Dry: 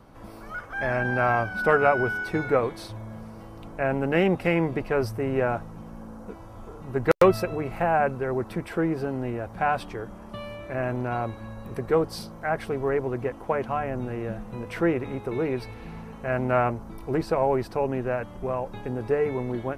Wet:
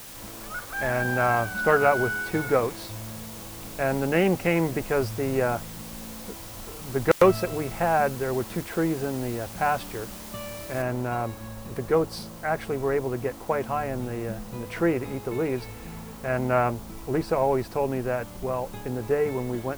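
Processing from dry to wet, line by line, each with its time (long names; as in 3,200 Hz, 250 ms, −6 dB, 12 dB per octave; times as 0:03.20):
0:10.82: noise floor change −43 dB −50 dB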